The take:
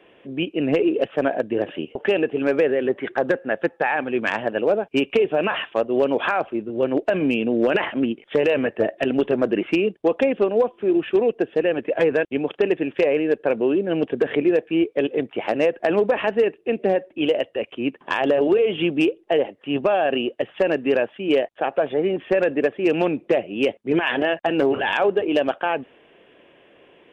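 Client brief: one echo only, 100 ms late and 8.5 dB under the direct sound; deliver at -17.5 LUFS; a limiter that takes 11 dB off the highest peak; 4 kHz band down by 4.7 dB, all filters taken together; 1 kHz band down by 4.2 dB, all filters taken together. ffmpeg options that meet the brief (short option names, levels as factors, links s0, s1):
-af "equalizer=f=1000:t=o:g=-6,equalizer=f=4000:t=o:g=-7.5,alimiter=limit=0.0944:level=0:latency=1,aecho=1:1:100:0.376,volume=3.76"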